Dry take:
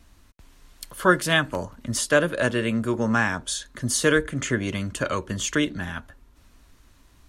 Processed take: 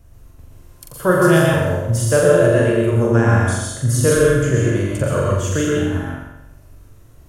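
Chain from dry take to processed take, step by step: graphic EQ 125/250/500/1000/2000/4000/8000 Hz +9/-9/+4/-5/-7/-12/-4 dB; flutter echo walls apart 7.4 m, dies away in 0.8 s; plate-style reverb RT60 0.61 s, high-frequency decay 0.75×, pre-delay 0.105 s, DRR -1 dB; gain +4 dB

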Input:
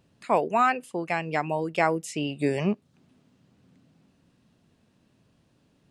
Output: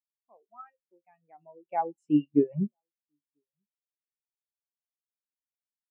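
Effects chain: Doppler pass-by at 2.22, 11 m/s, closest 3.2 m; reverb removal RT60 1.2 s; resonator 75 Hz, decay 0.3 s, harmonics all, mix 60%; outdoor echo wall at 170 m, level -23 dB; spectral expander 2.5:1; gain +8 dB

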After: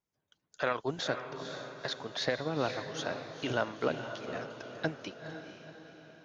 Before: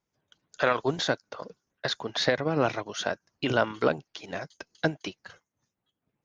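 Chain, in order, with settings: diffused feedback echo 0.484 s, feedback 50%, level -8 dB; gain -7 dB

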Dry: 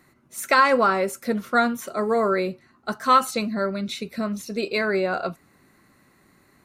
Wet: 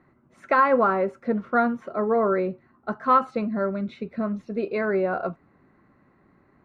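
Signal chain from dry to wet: LPF 1400 Hz 12 dB/oct

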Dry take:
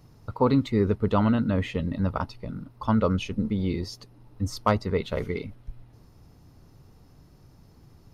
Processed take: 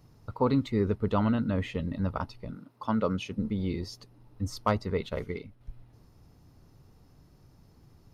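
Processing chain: 2.54–3.37 HPF 260 Hz -> 91 Hz 12 dB/oct; 5.09–5.61 upward expander 1.5:1, over -39 dBFS; gain -4 dB

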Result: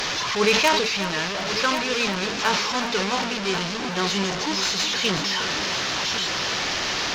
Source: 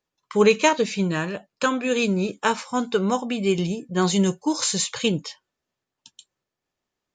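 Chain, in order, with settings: delta modulation 32 kbps, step -18 dBFS; tilt shelf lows -5 dB, about 670 Hz; added harmonics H 3 -11 dB, 5 -12 dB, 7 -19 dB, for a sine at -2.5 dBFS; on a send: multi-head echo 0.365 s, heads first and third, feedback 55%, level -12.5 dB; on the sum: sustainer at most 41 dB/s; gain -1 dB

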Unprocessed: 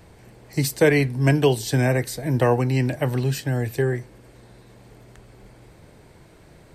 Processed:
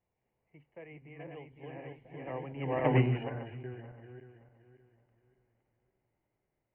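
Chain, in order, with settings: regenerating reverse delay 0.27 s, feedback 63%, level -2.5 dB; Doppler pass-by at 2.97, 20 m/s, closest 1.5 m; rippled Chebyshev low-pass 3000 Hz, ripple 6 dB

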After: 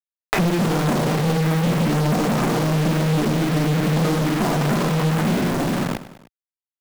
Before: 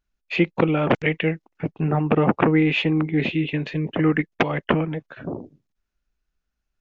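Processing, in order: opening faded in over 0.70 s; LPF 1200 Hz 24 dB/oct; low shelf 260 Hz +3.5 dB; reverb RT60 1.0 s, pre-delay 3 ms, DRR -6 dB; in parallel at -2.5 dB: compressor, threshold -15 dBFS, peak gain reduction 17.5 dB; on the sum: companded quantiser 2-bit; wrapped overs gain 13 dB; bell 78 Hz -12 dB 0.97 oct; on a send: feedback echo 0.101 s, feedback 39%, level -17 dB; on the sum: three-band squash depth 100%; gain +3 dB

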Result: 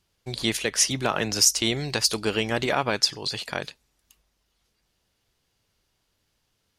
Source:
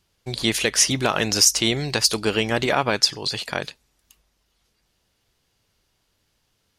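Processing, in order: 0.57–1.62 three-band expander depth 40%; gain -3.5 dB

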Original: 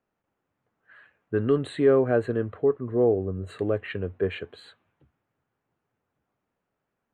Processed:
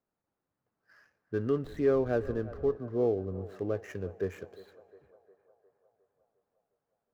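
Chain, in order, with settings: median filter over 15 samples; 1.64–2.75 wind noise 84 Hz -36 dBFS; narrowing echo 0.356 s, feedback 69%, band-pass 790 Hz, level -15 dB; on a send at -23 dB: reverb RT60 2.3 s, pre-delay 3 ms; on the sum: gain -6.5 dB

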